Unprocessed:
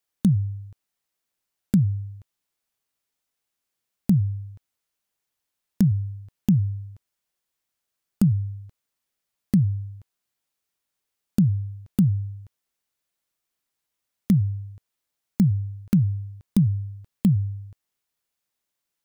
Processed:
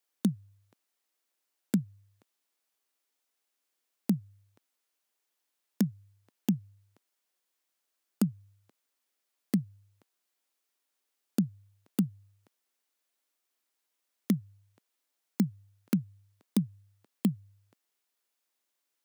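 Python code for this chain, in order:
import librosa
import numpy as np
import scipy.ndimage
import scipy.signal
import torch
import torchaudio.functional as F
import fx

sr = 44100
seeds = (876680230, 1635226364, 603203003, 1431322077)

y = scipy.signal.sosfilt(scipy.signal.butter(4, 240.0, 'highpass', fs=sr, output='sos'), x)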